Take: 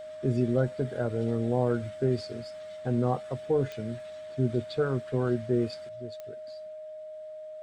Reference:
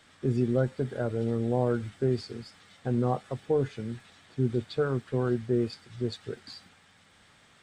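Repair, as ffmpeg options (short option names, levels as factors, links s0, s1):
-af "adeclick=t=4,bandreject=f=620:w=30,asetnsamples=n=441:p=0,asendcmd='5.89 volume volume 11dB',volume=1"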